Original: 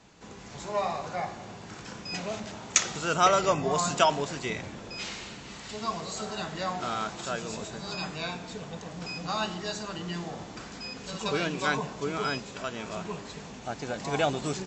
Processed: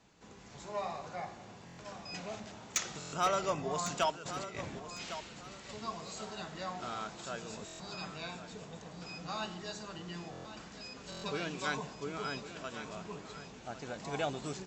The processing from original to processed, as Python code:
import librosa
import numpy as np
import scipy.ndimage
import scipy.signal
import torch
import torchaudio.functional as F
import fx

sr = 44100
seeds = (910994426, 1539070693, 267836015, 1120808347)

y = fx.over_compress(x, sr, threshold_db=-37.0, ratio=-0.5, at=(4.1, 4.78), fade=0.02)
y = fx.high_shelf(y, sr, hz=3400.0, db=4.5, at=(11.47, 11.95))
y = np.clip(y, -10.0 ** (-14.0 / 20.0), 10.0 ** (-14.0 / 20.0))
y = fx.echo_feedback(y, sr, ms=1103, feedback_pct=27, wet_db=-12)
y = fx.buffer_glitch(y, sr, at_s=(1.65, 2.99, 7.66, 10.31, 11.1), block=1024, repeats=5)
y = y * 10.0 ** (-8.5 / 20.0)